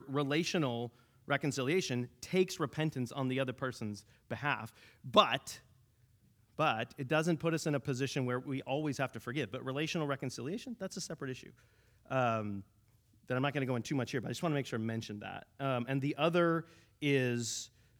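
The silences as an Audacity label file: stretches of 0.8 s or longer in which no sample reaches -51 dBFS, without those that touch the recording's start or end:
5.600000	6.580000	silence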